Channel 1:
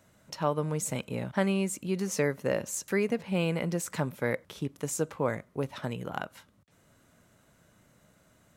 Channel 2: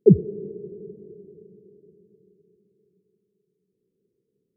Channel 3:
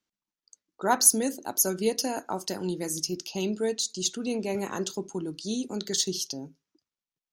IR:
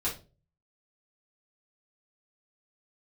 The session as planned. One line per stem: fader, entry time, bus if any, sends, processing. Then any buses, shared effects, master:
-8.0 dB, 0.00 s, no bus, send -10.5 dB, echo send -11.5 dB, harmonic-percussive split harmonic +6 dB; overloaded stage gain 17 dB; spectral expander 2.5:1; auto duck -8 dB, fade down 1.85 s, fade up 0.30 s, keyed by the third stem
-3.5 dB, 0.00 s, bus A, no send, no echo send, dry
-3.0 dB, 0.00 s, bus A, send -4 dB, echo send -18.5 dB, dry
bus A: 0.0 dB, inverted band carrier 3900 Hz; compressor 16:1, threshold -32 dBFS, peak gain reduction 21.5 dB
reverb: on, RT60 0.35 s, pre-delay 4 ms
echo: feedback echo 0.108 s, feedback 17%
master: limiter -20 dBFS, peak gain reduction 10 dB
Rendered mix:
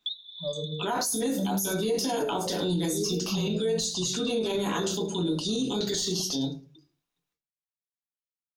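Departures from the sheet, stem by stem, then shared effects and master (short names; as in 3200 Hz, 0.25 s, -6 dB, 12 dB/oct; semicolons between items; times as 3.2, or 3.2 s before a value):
stem 1 -8.0 dB -> +0.5 dB; stem 3 -3.0 dB -> +6.0 dB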